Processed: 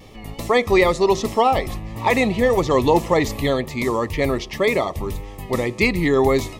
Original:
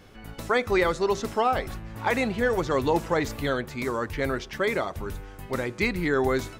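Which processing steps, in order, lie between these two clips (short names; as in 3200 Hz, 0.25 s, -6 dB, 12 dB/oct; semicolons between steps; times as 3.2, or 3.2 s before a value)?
wow and flutter 56 cents; Butterworth band-stop 1500 Hz, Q 2.8; gain +7.5 dB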